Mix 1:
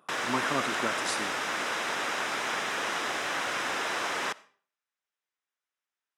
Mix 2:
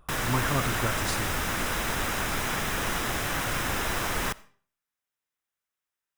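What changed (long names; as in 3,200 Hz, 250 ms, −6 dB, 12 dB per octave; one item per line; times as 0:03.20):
speech: remove high-pass filter 200 Hz 24 dB per octave
background: remove band-pass filter 380–6,300 Hz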